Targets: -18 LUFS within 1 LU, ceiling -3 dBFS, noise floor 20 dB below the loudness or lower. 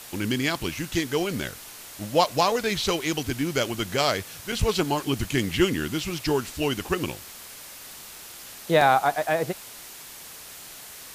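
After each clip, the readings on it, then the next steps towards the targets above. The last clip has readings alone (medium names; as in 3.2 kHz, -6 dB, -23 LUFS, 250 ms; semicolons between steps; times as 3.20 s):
dropouts 2; longest dropout 3.5 ms; noise floor -43 dBFS; noise floor target -46 dBFS; loudness -25.5 LUFS; peak level -6.5 dBFS; loudness target -18.0 LUFS
-> interpolate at 4.52/8.81 s, 3.5 ms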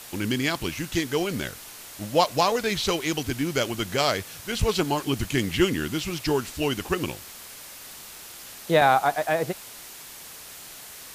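dropouts 0; noise floor -43 dBFS; noise floor target -46 dBFS
-> noise reduction 6 dB, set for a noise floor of -43 dBFS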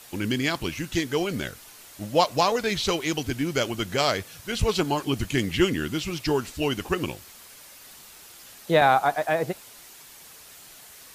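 noise floor -48 dBFS; loudness -25.5 LUFS; peak level -7.0 dBFS; loudness target -18.0 LUFS
-> trim +7.5 dB; peak limiter -3 dBFS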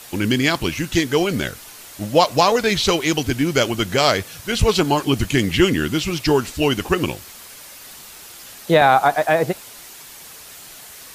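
loudness -18.5 LUFS; peak level -3.0 dBFS; noise floor -40 dBFS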